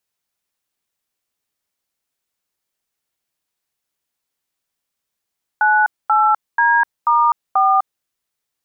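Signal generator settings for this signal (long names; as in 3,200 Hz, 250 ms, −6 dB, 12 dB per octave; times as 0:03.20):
touch tones "98D*4", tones 252 ms, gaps 234 ms, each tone −13.5 dBFS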